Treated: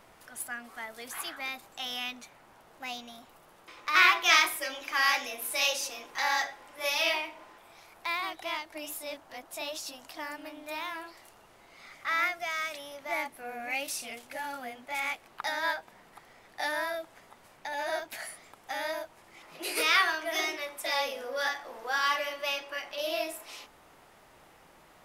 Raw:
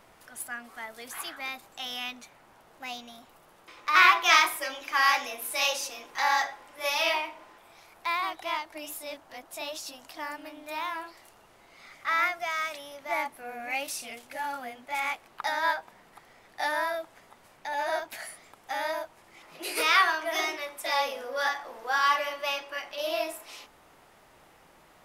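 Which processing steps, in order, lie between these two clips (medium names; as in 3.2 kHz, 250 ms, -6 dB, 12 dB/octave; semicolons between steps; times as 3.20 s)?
dynamic bell 1 kHz, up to -6 dB, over -40 dBFS, Q 1.3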